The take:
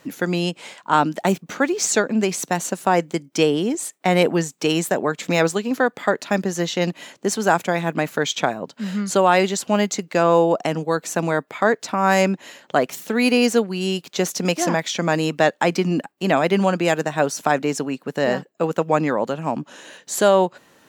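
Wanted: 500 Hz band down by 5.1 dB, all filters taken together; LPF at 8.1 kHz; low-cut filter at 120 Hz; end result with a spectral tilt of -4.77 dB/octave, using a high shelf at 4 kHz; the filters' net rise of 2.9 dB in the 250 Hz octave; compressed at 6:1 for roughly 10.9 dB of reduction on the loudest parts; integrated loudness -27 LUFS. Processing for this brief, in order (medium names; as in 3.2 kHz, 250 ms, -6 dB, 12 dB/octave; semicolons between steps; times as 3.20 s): high-pass 120 Hz; low-pass 8.1 kHz; peaking EQ 250 Hz +7 dB; peaking EQ 500 Hz -8.5 dB; treble shelf 4 kHz -3.5 dB; compression 6:1, threshold -23 dBFS; trim +1 dB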